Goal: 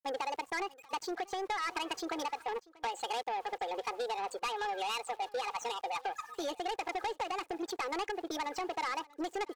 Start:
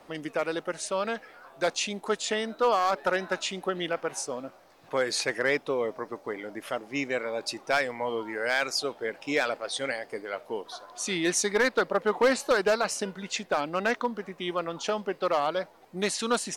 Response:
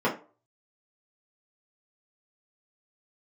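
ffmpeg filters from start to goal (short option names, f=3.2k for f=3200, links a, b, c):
-af "afftdn=nr=34:nf=-38,equalizer=f=110:t=o:w=1.9:g=3.5,aecho=1:1:4.2:0.94,adynamicequalizer=threshold=0.0141:dfrequency=310:dqfactor=1.1:tfrequency=310:tqfactor=1.1:attack=5:release=100:ratio=0.375:range=3.5:mode=boostabove:tftype=bell,acompressor=threshold=-30dB:ratio=10,aresample=11025,asoftclip=type=tanh:threshold=-30dB,aresample=44100,adynamicsmooth=sensitivity=2:basefreq=870,atempo=1,crystalizer=i=8:c=0,aeval=exprs='val(0)*gte(abs(val(0)),0.00168)':c=same,aecho=1:1:1107:0.0708,asetrate=76440,aresample=44100"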